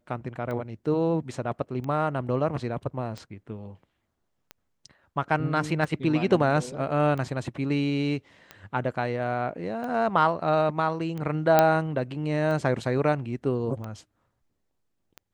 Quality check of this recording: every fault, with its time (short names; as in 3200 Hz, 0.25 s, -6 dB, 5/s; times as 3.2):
tick 45 rpm -23 dBFS
11.59 pop -5 dBFS